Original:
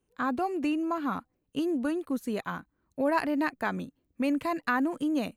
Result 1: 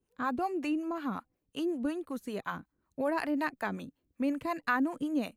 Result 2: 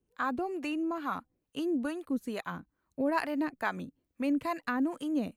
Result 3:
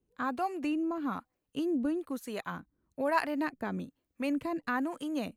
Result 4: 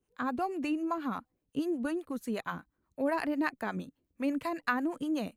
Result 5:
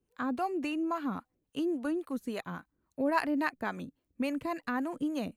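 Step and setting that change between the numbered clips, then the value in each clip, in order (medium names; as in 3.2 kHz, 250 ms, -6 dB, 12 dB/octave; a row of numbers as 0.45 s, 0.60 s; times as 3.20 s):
harmonic tremolo, rate: 5.4 Hz, 2.3 Hz, 1.1 Hz, 8.2 Hz, 3.6 Hz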